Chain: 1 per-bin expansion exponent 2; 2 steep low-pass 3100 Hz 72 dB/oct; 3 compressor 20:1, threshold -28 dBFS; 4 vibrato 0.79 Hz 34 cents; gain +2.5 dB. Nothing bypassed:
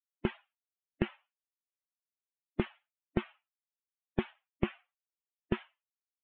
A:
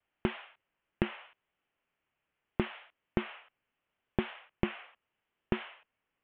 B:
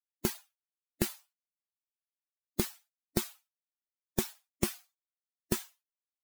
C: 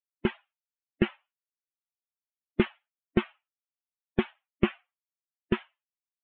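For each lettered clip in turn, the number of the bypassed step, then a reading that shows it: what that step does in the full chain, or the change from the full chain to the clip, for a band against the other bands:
1, 4 kHz band +3.0 dB; 2, 4 kHz band +8.5 dB; 3, mean gain reduction 5.5 dB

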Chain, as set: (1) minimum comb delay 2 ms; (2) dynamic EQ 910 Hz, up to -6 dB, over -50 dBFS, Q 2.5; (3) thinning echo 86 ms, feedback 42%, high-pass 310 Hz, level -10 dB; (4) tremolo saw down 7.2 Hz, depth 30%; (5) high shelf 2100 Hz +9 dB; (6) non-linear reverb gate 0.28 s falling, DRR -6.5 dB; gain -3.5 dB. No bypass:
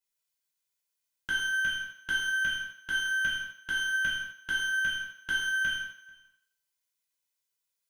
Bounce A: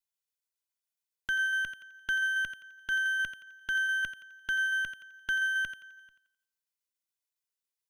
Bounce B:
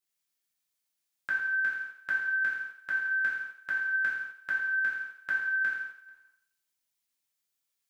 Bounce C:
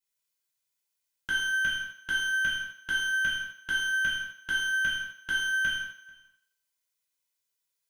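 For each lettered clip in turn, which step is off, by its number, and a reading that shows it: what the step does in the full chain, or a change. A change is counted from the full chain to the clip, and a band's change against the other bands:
6, momentary loudness spread change +5 LU; 1, momentary loudness spread change +1 LU; 4, loudness change +1.5 LU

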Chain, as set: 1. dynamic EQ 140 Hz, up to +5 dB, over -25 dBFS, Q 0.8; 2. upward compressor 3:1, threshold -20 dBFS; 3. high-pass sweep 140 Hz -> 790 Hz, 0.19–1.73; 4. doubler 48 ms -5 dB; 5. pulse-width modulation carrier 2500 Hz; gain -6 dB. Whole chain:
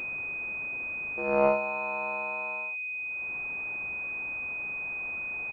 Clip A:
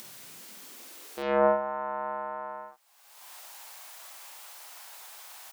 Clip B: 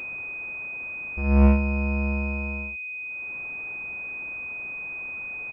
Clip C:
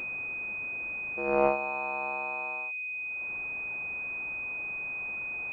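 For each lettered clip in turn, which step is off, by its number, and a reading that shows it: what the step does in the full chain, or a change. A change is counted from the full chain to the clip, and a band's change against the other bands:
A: 5, 2 kHz band -13.5 dB; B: 3, 250 Hz band +19.0 dB; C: 4, 1 kHz band +2.0 dB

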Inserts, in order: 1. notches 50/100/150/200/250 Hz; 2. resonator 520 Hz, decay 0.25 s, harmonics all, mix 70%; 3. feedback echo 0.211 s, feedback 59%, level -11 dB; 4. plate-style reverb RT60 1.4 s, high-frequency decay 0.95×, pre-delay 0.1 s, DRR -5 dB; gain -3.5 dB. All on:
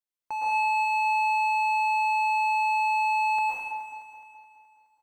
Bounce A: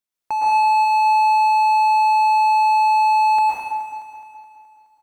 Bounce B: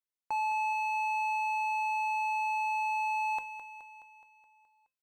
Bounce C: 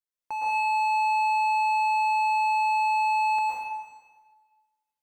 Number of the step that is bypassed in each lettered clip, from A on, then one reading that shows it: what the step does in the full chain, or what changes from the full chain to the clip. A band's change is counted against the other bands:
2, loudness change +8.5 LU; 4, momentary loudness spread change -3 LU; 3, momentary loudness spread change -2 LU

